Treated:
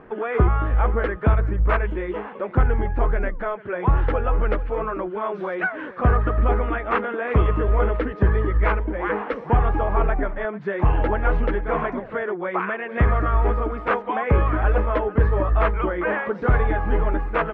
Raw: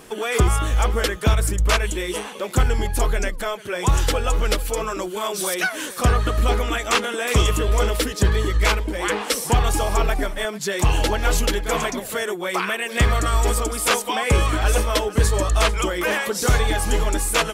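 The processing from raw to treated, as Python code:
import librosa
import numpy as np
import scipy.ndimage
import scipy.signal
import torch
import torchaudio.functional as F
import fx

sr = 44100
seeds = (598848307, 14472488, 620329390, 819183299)

y = scipy.signal.sosfilt(scipy.signal.butter(4, 1800.0, 'lowpass', fs=sr, output='sos'), x)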